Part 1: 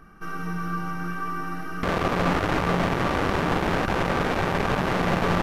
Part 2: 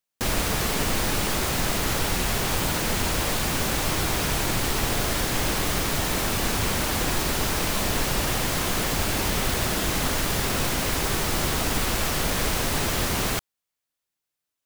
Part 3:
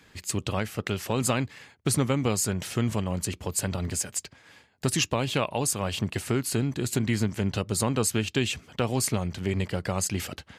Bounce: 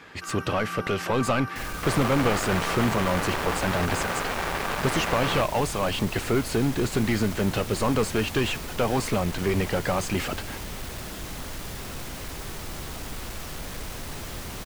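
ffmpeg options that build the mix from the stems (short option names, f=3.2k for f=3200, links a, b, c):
-filter_complex "[0:a]highpass=f=850:p=1,volume=-1dB[a];[1:a]asoftclip=type=tanh:threshold=-19.5dB,adelay=1350,volume=-10.5dB[b];[2:a]asplit=2[c][d];[d]highpass=f=720:p=1,volume=23dB,asoftclip=type=tanh:threshold=-11.5dB[e];[c][e]amix=inputs=2:normalize=0,lowpass=f=1.3k:p=1,volume=-6dB,volume=-2dB[f];[a][b][f]amix=inputs=3:normalize=0,lowshelf=f=140:g=4.5"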